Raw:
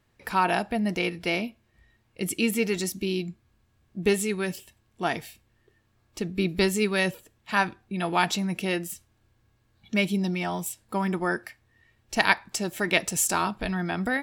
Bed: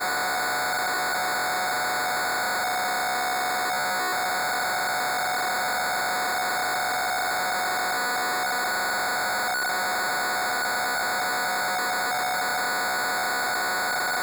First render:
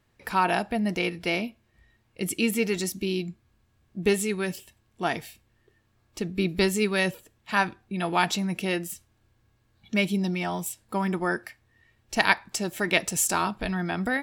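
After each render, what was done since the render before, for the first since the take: no audible change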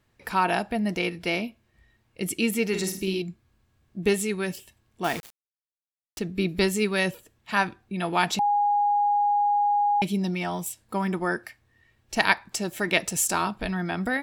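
2.68–3.22 s: flutter echo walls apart 8.9 m, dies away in 0.44 s; 5.04–6.19 s: word length cut 6-bit, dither none; 8.39–10.02 s: bleep 822 Hz -19 dBFS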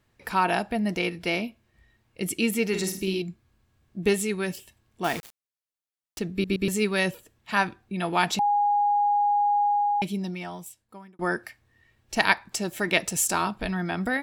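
6.32 s: stutter in place 0.12 s, 3 plays; 9.63–11.19 s: fade out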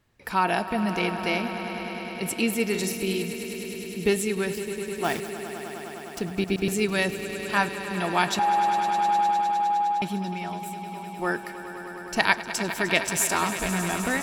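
echo with a slow build-up 102 ms, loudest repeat 5, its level -14 dB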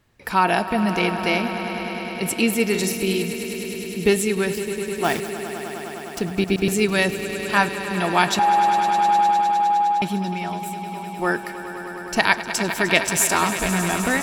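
trim +5 dB; peak limiter -2 dBFS, peak gain reduction 3 dB

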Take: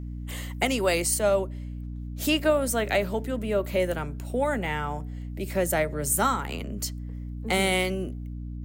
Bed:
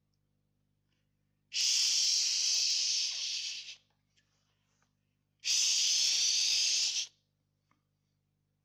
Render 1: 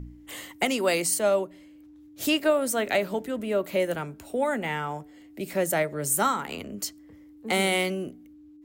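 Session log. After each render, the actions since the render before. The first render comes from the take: de-hum 60 Hz, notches 4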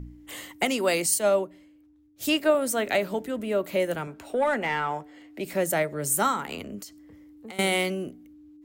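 1.06–2.55 s: three bands expanded up and down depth 40%; 4.07–5.45 s: overdrive pedal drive 12 dB, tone 2.5 kHz, clips at -14.5 dBFS; 6.80–7.59 s: compression 12:1, threshold -37 dBFS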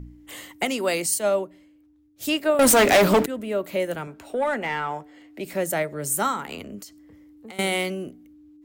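2.59–3.26 s: waveshaping leveller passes 5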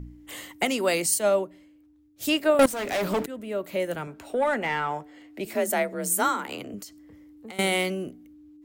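2.66–4.23 s: fade in, from -19.5 dB; 5.45–6.74 s: frequency shift +41 Hz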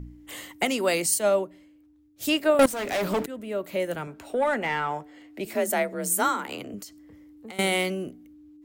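no audible change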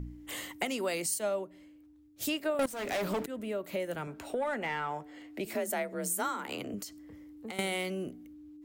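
compression 2.5:1, threshold -34 dBFS, peak gain reduction 12.5 dB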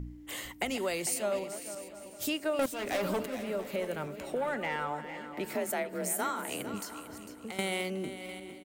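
backward echo that repeats 350 ms, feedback 48%, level -12 dB; feedback delay 451 ms, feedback 31%, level -12.5 dB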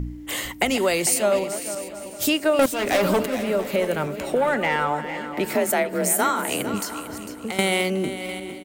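trim +11.5 dB

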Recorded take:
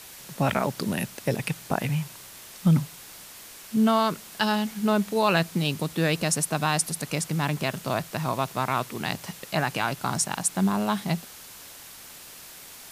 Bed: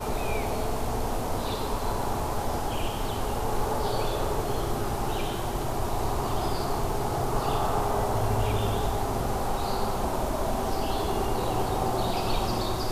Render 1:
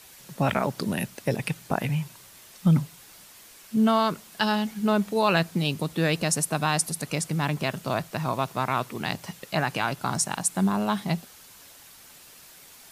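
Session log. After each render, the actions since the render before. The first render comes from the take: noise reduction 6 dB, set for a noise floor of -45 dBFS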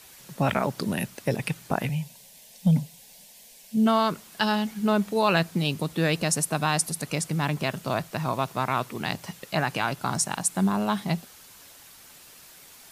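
1.89–3.86 s: static phaser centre 340 Hz, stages 6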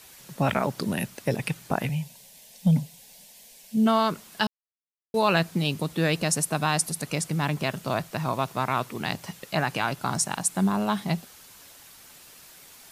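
4.47–5.14 s: mute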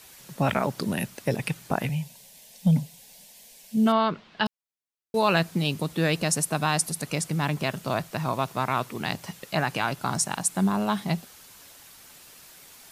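3.92–4.46 s: low-pass 3.9 kHz 24 dB/octave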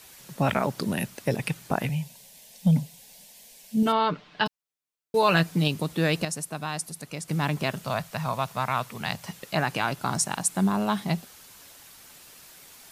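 3.82–5.68 s: comb 6.7 ms, depth 49%; 6.25–7.28 s: gain -7.5 dB; 7.84–9.26 s: peaking EQ 330 Hz -15 dB 0.57 oct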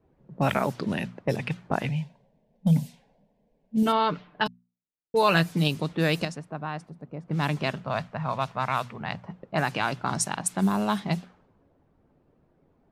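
level-controlled noise filter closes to 340 Hz, open at -20.5 dBFS; hum notches 60/120/180/240 Hz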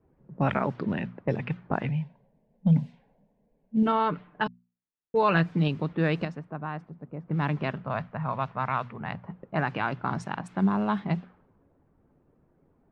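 low-pass 2 kHz 12 dB/octave; peaking EQ 660 Hz -3 dB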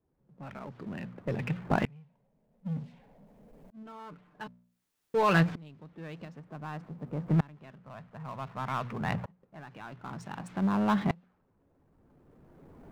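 power-law waveshaper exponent 0.7; sawtooth tremolo in dB swelling 0.54 Hz, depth 29 dB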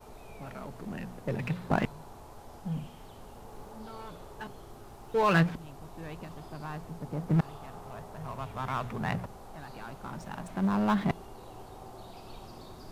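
add bed -20 dB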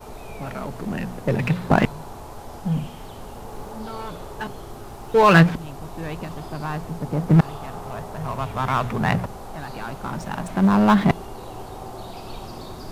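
trim +11 dB; peak limiter -3 dBFS, peak gain reduction 2 dB

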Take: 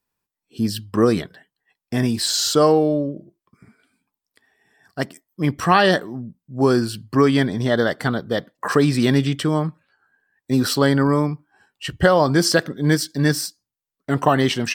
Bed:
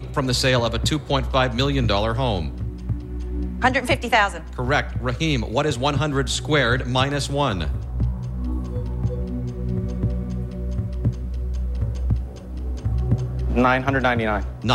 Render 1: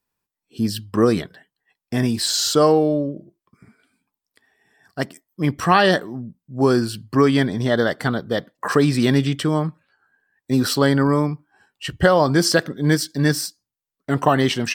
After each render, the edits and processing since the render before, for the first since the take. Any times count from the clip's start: no audible change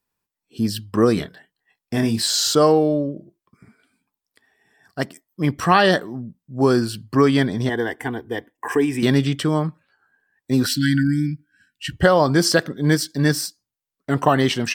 1.15–2.55 s: doubling 27 ms -7.5 dB; 7.69–9.03 s: static phaser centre 870 Hz, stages 8; 10.66–11.92 s: brick-wall FIR band-stop 330–1400 Hz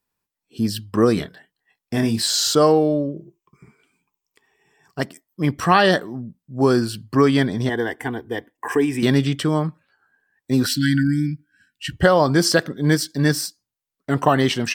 3.14–5.00 s: rippled EQ curve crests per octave 0.73, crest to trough 10 dB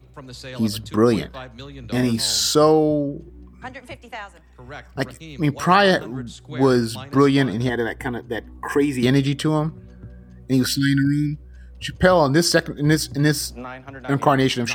add bed -17 dB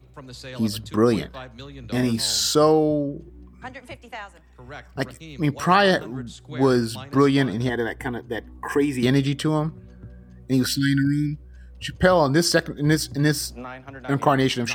trim -2 dB

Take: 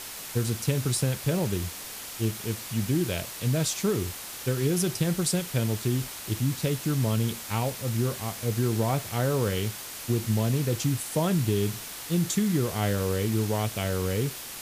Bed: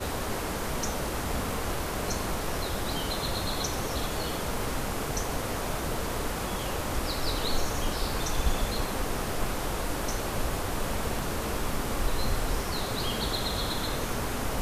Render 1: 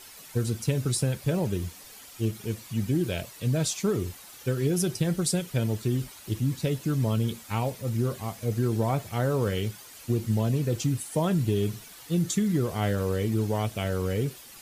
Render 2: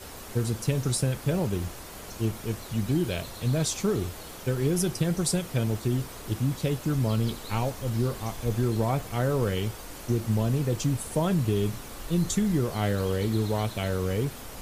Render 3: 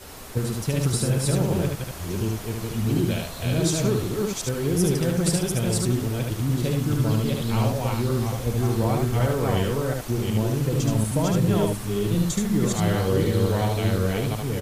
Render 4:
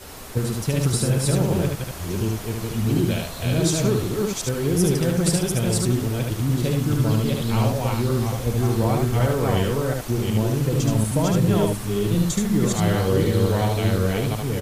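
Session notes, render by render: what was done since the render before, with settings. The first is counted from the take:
noise reduction 11 dB, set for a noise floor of -39 dBFS
add bed -12 dB
chunks repeated in reverse 368 ms, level -1 dB; on a send: delay 74 ms -3.5 dB
trim +2 dB

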